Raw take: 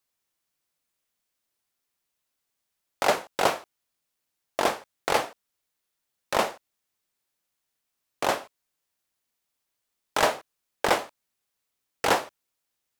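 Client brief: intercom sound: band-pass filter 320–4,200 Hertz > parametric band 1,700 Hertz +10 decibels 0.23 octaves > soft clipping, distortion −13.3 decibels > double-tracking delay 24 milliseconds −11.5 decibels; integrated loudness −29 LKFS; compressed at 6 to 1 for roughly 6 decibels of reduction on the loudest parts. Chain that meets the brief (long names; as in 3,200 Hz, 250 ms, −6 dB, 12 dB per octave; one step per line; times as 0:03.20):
downward compressor 6 to 1, threshold −23 dBFS
band-pass filter 320–4,200 Hz
parametric band 1,700 Hz +10 dB 0.23 octaves
soft clipping −19.5 dBFS
double-tracking delay 24 ms −11.5 dB
level +4 dB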